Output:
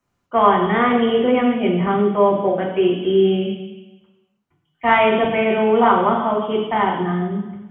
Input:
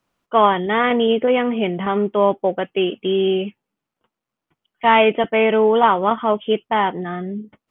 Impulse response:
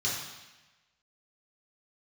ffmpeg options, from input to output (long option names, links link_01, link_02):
-filter_complex "[0:a]asplit=2[link_01][link_02];[1:a]atrim=start_sample=2205,lowshelf=frequency=380:gain=8.5[link_03];[link_02][link_03]afir=irnorm=-1:irlink=0,volume=-7.5dB[link_04];[link_01][link_04]amix=inputs=2:normalize=0,volume=-3dB"